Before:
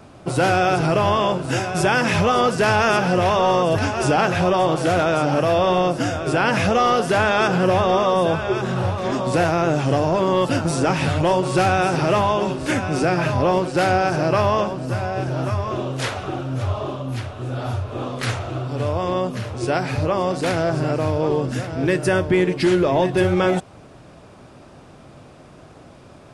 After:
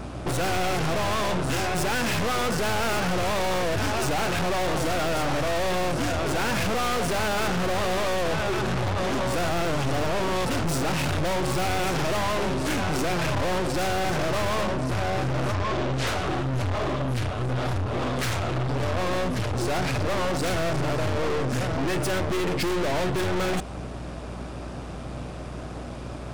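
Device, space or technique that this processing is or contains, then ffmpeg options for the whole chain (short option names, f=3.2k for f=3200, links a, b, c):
valve amplifier with mains hum: -filter_complex "[0:a]aeval=exprs='(tanh(50.1*val(0)+0.5)-tanh(0.5))/50.1':c=same,aeval=exprs='val(0)+0.00501*(sin(2*PI*60*n/s)+sin(2*PI*2*60*n/s)/2+sin(2*PI*3*60*n/s)/3+sin(2*PI*4*60*n/s)/4+sin(2*PI*5*60*n/s)/5)':c=same,asettb=1/sr,asplit=3[a][b][c];[a]atrim=end=15.544[d];[b]atrim=start=15.54:end=16.07,asetpts=PTS-STARTPTS,afade=t=in:d=0.004:c=qsin,afade=t=out:st=0.526:d=0.004:c=qsin,lowpass=7.3k[e];[c]atrim=start=16.066[f];[d][e]acrossfade=d=0.004:c1=hsin:c2=qsin[g];[g][f]acrossfade=d=0.004:c1=qsin:c2=hsin,volume=9dB"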